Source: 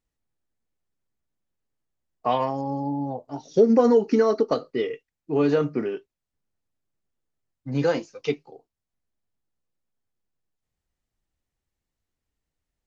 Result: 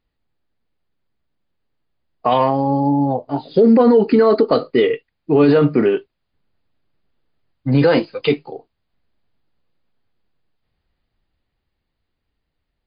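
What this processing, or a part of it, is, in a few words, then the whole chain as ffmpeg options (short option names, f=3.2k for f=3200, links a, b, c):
low-bitrate web radio: -af "dynaudnorm=f=410:g=13:m=6dB,alimiter=limit=-13.5dB:level=0:latency=1:release=23,volume=9dB" -ar 11025 -c:a libmp3lame -b:a 48k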